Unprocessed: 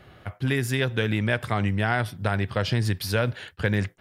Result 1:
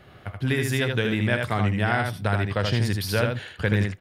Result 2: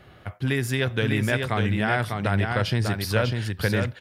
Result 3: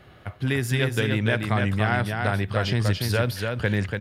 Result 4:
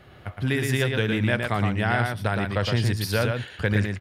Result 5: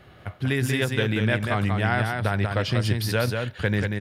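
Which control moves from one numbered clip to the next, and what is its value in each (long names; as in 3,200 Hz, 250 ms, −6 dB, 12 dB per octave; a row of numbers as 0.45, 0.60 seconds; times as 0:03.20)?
single-tap delay, delay time: 78, 598, 288, 115, 188 milliseconds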